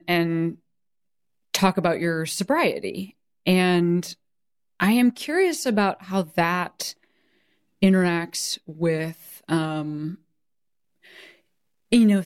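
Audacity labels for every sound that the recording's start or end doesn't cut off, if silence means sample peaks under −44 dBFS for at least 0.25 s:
1.540000	3.100000	sound
3.460000	4.140000	sound
4.800000	6.930000	sound
7.820000	10.150000	sound
11.050000	11.310000	sound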